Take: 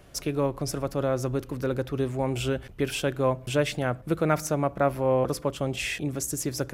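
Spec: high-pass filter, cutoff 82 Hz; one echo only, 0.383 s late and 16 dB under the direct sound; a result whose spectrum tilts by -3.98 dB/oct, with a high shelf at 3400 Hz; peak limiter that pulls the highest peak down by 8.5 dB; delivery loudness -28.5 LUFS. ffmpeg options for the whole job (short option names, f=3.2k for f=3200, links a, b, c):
-af "highpass=82,highshelf=f=3.4k:g=7.5,alimiter=limit=-15.5dB:level=0:latency=1,aecho=1:1:383:0.158,volume=-0.5dB"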